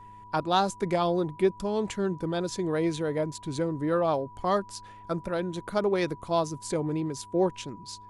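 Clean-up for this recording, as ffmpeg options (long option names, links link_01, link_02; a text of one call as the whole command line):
ffmpeg -i in.wav -af "bandreject=frequency=103.7:width_type=h:width=4,bandreject=frequency=207.4:width_type=h:width=4,bandreject=frequency=311.1:width_type=h:width=4,bandreject=frequency=414.8:width_type=h:width=4,bandreject=frequency=980:width=30" out.wav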